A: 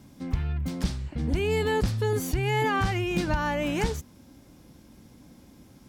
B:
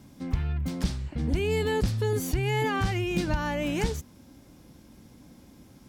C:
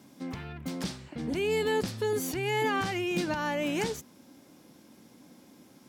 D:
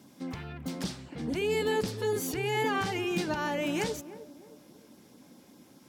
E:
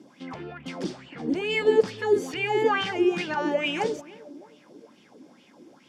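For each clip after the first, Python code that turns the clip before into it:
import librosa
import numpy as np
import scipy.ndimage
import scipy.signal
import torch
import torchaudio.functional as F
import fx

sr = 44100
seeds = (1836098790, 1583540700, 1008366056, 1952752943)

y1 = fx.dynamic_eq(x, sr, hz=1100.0, q=0.76, threshold_db=-37.0, ratio=4.0, max_db=-4)
y2 = scipy.signal.sosfilt(scipy.signal.butter(2, 220.0, 'highpass', fs=sr, output='sos'), y1)
y3 = fx.filter_lfo_notch(y2, sr, shape='sine', hz=4.9, low_hz=220.0, high_hz=2400.0, q=2.8)
y3 = fx.echo_banded(y3, sr, ms=311, feedback_pct=43, hz=460.0, wet_db=-13)
y4 = fx.bandpass_edges(y3, sr, low_hz=130.0, high_hz=6600.0)
y4 = fx.notch(y4, sr, hz=4000.0, q=15.0)
y4 = fx.bell_lfo(y4, sr, hz=2.3, low_hz=320.0, high_hz=3100.0, db=16)
y4 = F.gain(torch.from_numpy(y4), -1.5).numpy()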